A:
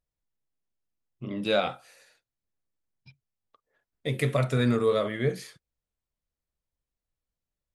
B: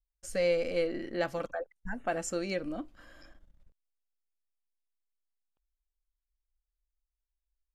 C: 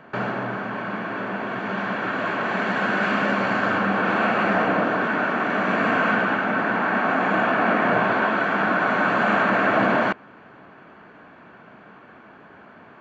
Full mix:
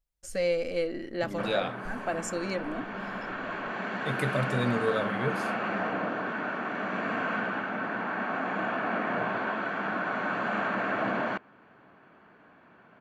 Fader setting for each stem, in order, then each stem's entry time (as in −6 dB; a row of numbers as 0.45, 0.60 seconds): −4.5, +0.5, −10.0 decibels; 0.00, 0.00, 1.25 seconds